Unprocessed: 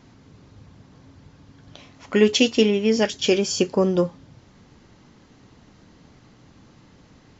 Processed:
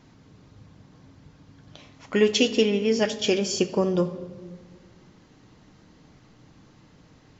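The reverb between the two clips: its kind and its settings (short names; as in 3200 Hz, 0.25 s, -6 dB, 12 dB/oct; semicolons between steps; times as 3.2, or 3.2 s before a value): shoebox room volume 2000 m³, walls mixed, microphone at 0.53 m; gain -3 dB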